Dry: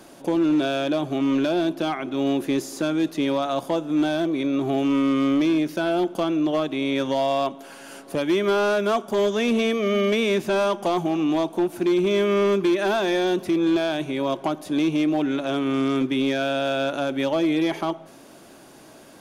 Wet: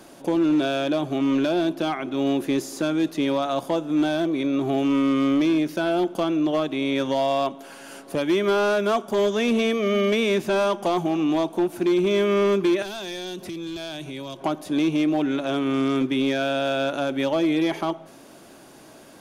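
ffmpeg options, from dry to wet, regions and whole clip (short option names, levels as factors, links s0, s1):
-filter_complex "[0:a]asettb=1/sr,asplit=3[s0][s1][s2];[s0]atrim=end=12.824[s3];[s1]atrim=start=12.82:end=14.41,asetpts=PTS-STARTPTS,afade=t=in:d=0.004:c=qsin,afade=t=out:st=1.586:d=0.004:c=qsin,acrossover=split=140|3000[s4][s5][s6];[s5]acompressor=threshold=0.02:ratio=5:attack=3.2:release=140:knee=2.83:detection=peak[s7];[s4][s7][s6]amix=inputs=3:normalize=0,asoftclip=type=hard:threshold=0.0631[s8];[s2]atrim=start=14.406[s9];[s3][s8]acrossfade=d=0.004:c1=hsin:c2=qsin[s10];[s10][s9]acrossfade=d=0.004:c1=qsin:c2=hsin"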